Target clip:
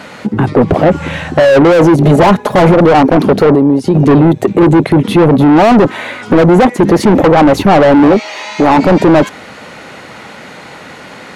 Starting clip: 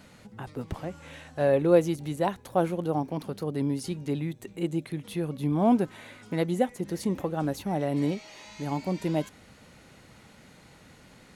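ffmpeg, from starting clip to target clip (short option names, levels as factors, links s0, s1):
-filter_complex "[0:a]afwtdn=0.02,asettb=1/sr,asplit=3[s0][s1][s2];[s0]atrim=end=2.044[s3];[s1]atrim=start=2.04:end=2.74,asetpts=PTS-STARTPTS,afade=t=in:d=0.004:c=qsin,afade=t=out:st=0.696:d=0.004:c=qsin,aecho=1:1:4.8:0.87,atrim=end_sample=30870[s4];[s2]atrim=start=2.736[s5];[s3][s4]acrossfade=d=0.004:c1=hsin:c2=qsin[s6];[s6][s5]acrossfade=d=0.004:c1=qsin:c2=hsin,asplit=3[s7][s8][s9];[s7]afade=t=out:st=3.54:d=0.02[s10];[s8]acompressor=threshold=0.01:ratio=8,afade=t=in:st=3.54:d=0.02,afade=t=out:st=3.94:d=0.02[s11];[s9]afade=t=in:st=3.94:d=0.02[s12];[s10][s11][s12]amix=inputs=3:normalize=0,asettb=1/sr,asplit=3[s13][s14][s15];[s13]atrim=end=8.034[s16];[s14]atrim=start=8.03:end=8.77,asetpts=PTS-STARTPTS,afade=t=in:d=0.004:c=qsin,afade=t=out:st=0.736:d=0.004:c=qsin,highpass=f=390:p=1[s17];[s15]atrim=start=8.766[s18];[s16][s17]acrossfade=d=0.004:c1=hsin:c2=qsin[s19];[s19][s18]acrossfade=d=0.004:c1=qsin:c2=hsin,asplit=2[s20][s21];[s21]highpass=f=720:p=1,volume=70.8,asoftclip=type=tanh:threshold=0.376[s22];[s20][s22]amix=inputs=2:normalize=0,lowpass=f=1700:p=1,volume=0.501,alimiter=level_in=6.31:limit=0.891:release=50:level=0:latency=1,volume=0.891"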